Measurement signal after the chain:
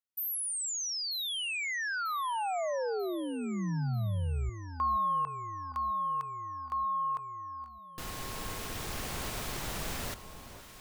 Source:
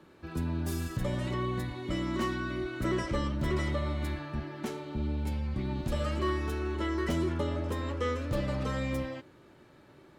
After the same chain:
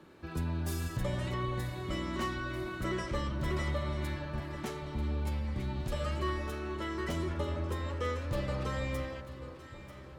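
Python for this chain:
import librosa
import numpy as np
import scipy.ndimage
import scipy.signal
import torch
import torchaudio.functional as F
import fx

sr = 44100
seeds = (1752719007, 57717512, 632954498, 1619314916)

p1 = fx.dynamic_eq(x, sr, hz=270.0, q=1.4, threshold_db=-46.0, ratio=4.0, max_db=-6)
p2 = fx.rider(p1, sr, range_db=3, speed_s=2.0)
p3 = p2 + fx.echo_alternate(p2, sr, ms=470, hz=1200.0, feedback_pct=74, wet_db=-11.0, dry=0)
y = p3 * 10.0 ** (-1.5 / 20.0)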